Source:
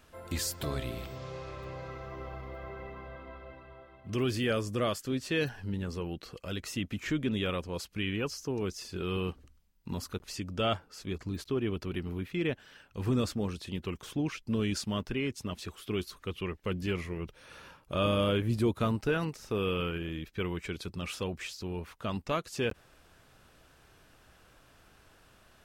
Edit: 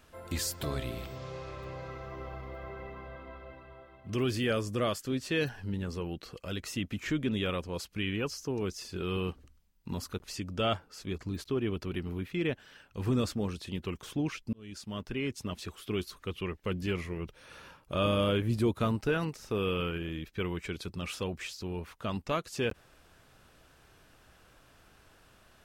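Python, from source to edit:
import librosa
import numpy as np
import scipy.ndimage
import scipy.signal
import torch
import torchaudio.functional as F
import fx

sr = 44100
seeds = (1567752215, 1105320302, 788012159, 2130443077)

y = fx.edit(x, sr, fx.fade_in_span(start_s=14.53, length_s=0.79), tone=tone)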